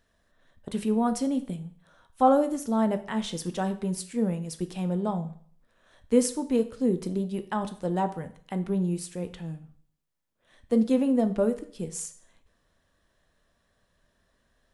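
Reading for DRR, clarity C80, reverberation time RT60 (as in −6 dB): 8.5 dB, 18.0 dB, 0.55 s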